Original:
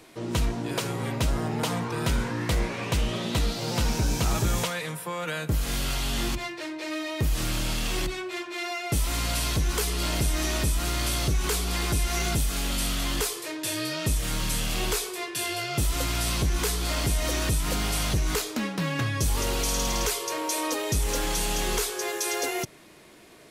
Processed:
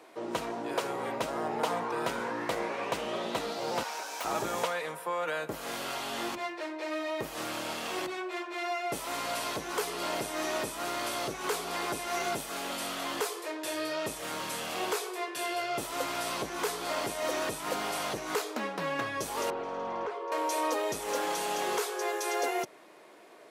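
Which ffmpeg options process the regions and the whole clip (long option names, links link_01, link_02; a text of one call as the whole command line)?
ffmpeg -i in.wav -filter_complex "[0:a]asettb=1/sr,asplit=3[link_01][link_02][link_03];[link_01]atrim=end=3.834[link_04];[link_02]atrim=start=3.83:end=4.25,asetpts=PTS-STARTPTS,afade=type=in:duration=0.004:curve=qsin,afade=type=out:start_time=0.416:duration=0.004:curve=qsin,highpass=840,aeval=exprs='(mod(13.3*val(0)+1,2)-1)/13.3':channel_layout=same[link_05];[link_03]atrim=start=4.246[link_06];[link_04][link_05]acrossfade=duration=0.004:curve1=hsin:curve2=qsin[link_07];[link_07][link_06]acrossfade=duration=0.004:curve1=qsin:curve2=hsin,asettb=1/sr,asplit=3[link_08][link_09][link_10];[link_08]atrim=end=19.504[link_11];[link_09]atrim=start=19.5:end=20.32,asetpts=PTS-STARTPTS,afade=type=in:duration=0.004:curve=qsin,afade=type=out:start_time=0.816:duration=0.004:curve=qsin,lowpass=1500,acrossover=split=230|3000[link_12][link_13][link_14];[link_13]acompressor=threshold=-37dB:ratio=1.5:attack=3.2:release=140:knee=2.83:detection=peak[link_15];[link_12][link_15][link_14]amix=inputs=3:normalize=0[link_16];[link_10]atrim=start=20.316[link_17];[link_11][link_16]acrossfade=duration=0.004:curve1=hsin:curve2=qsin[link_18];[link_18][link_17]acrossfade=duration=0.004:curve1=qsin:curve2=hsin,highpass=670,tiltshelf=frequency=1300:gain=9.5" out.wav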